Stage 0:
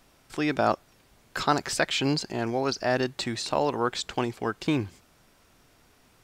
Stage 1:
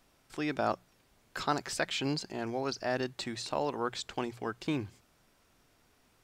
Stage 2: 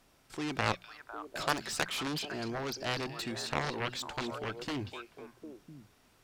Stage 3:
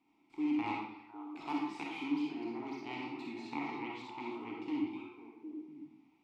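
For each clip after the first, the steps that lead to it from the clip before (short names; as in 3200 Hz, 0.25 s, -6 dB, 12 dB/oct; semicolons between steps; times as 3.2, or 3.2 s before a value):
notches 60/120/180 Hz; gain -7 dB
delay with a stepping band-pass 0.251 s, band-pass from 3300 Hz, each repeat -1.4 oct, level -5.5 dB; added harmonics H 7 -10 dB, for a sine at -14 dBFS
vowel filter u; digital reverb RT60 0.77 s, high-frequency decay 0.75×, pre-delay 10 ms, DRR -2.5 dB; gain +4 dB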